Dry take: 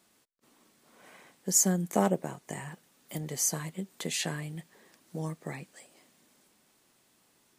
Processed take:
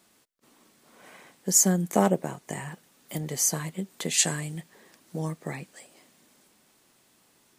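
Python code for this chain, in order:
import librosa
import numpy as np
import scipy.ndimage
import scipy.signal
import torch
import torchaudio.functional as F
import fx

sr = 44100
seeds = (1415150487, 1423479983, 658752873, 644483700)

y = fx.peak_eq(x, sr, hz=7700.0, db=fx.line((4.17, 14.5), (4.57, 6.5)), octaves=0.93, at=(4.17, 4.57), fade=0.02)
y = y * librosa.db_to_amplitude(4.0)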